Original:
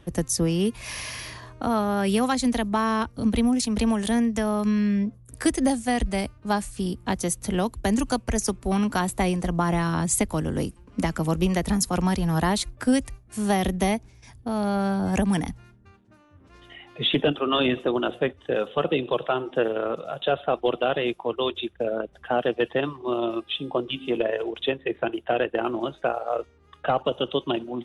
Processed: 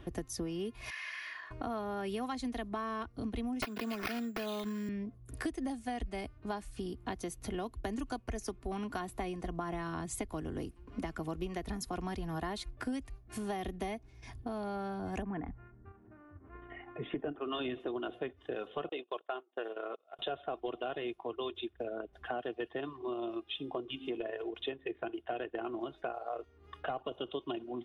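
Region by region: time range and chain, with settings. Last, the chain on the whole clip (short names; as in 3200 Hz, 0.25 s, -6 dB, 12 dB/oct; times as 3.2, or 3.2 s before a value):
0.9–1.51 band-pass 1700 Hz, Q 2.2 + tilt +2.5 dB/oct
3.62–4.89 HPF 150 Hz 24 dB/oct + resonant high shelf 5300 Hz +13 dB, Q 1.5 + careless resampling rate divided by 6×, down none, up hold
15.22–17.41 LPF 1900 Hz 24 dB/oct + gate -51 dBFS, range -11 dB + upward compressor, threshold -45 dBFS
18.89–20.19 gate -28 dBFS, range -28 dB + HPF 460 Hz
whole clip: bell 8400 Hz -10 dB 1.3 oct; comb 2.8 ms, depth 44%; compressor 3:1, threshold -40 dBFS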